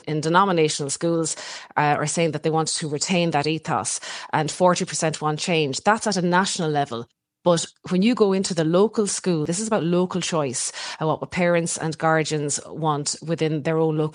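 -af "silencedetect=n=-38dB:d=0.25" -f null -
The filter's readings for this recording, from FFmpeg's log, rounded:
silence_start: 7.04
silence_end: 7.46 | silence_duration: 0.42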